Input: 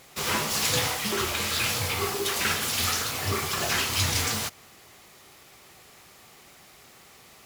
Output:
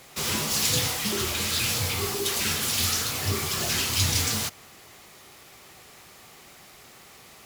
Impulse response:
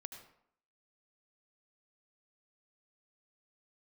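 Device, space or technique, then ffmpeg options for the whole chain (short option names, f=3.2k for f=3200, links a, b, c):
one-band saturation: -filter_complex "[0:a]acrossover=split=370|2900[a][b][c];[b]asoftclip=type=tanh:threshold=-36.5dB[d];[a][d][c]amix=inputs=3:normalize=0,volume=2.5dB"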